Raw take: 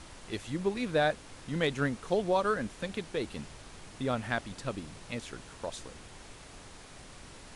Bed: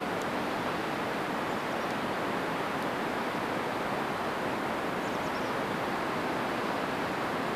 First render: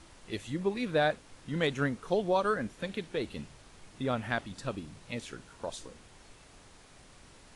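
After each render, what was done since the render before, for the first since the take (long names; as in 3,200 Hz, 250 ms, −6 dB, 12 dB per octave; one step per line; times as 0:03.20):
noise reduction from a noise print 6 dB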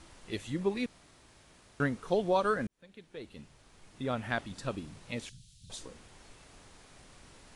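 0:00.86–0:01.80: fill with room tone
0:02.67–0:04.51: fade in
0:05.29–0:05.70: Chebyshev band-stop filter 140–3,600 Hz, order 3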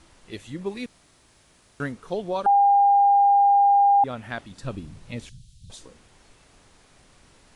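0:00.66–0:01.92: high-shelf EQ 5,200 Hz +5.5 dB
0:02.46–0:04.04: beep over 804 Hz −13.5 dBFS
0:04.63–0:05.71: low-shelf EQ 180 Hz +11 dB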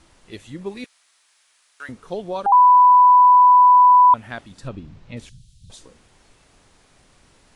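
0:00.84–0:01.89: high-pass filter 1,300 Hz
0:02.52–0:04.14: beep over 993 Hz −7.5 dBFS
0:04.68–0:05.17: high-frequency loss of the air 120 metres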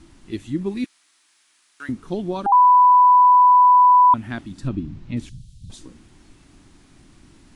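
low shelf with overshoot 390 Hz +6.5 dB, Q 3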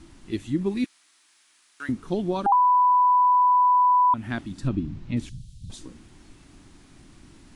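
downward compressor, threshold −17 dBFS, peak gain reduction 6.5 dB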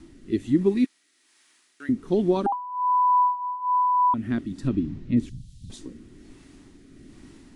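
hollow resonant body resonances 260/390/1,900 Hz, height 7 dB, ringing for 25 ms
rotating-speaker cabinet horn 1.2 Hz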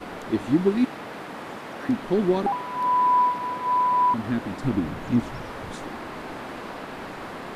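mix in bed −4.5 dB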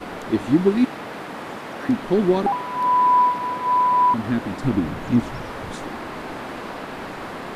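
level +3.5 dB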